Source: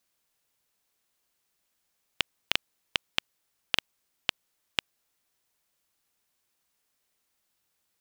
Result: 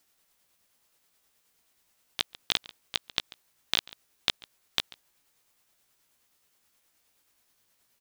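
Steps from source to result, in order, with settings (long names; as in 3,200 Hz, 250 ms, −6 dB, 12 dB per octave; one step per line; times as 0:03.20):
pitch shift by two crossfaded delay taps +3 semitones
slap from a distant wall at 24 metres, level −27 dB
boost into a limiter +11 dB
level −2.5 dB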